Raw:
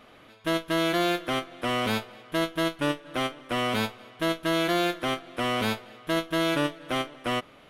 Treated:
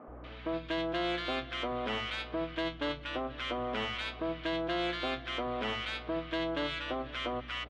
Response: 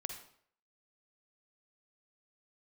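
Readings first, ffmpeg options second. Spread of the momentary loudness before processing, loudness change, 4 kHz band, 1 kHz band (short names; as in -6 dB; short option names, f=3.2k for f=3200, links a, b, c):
6 LU, -7.0 dB, -5.5 dB, -7.0 dB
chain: -filter_complex "[0:a]lowpass=f=4.2k:w=0.5412,lowpass=f=4.2k:w=1.3066,acrossover=split=170[a][b];[b]acontrast=83[c];[a][c]amix=inputs=2:normalize=0,lowshelf=f=360:g=-3.5,acompressor=threshold=-38dB:ratio=2,asoftclip=type=tanh:threshold=-20.5dB,aeval=exprs='val(0)+0.00447*(sin(2*PI*60*n/s)+sin(2*PI*2*60*n/s)/2+sin(2*PI*3*60*n/s)/3+sin(2*PI*4*60*n/s)/4+sin(2*PI*5*60*n/s)/5)':c=same,acrossover=split=180|1200[d][e][f];[d]adelay=80[g];[f]adelay=240[h];[g][e][h]amix=inputs=3:normalize=0"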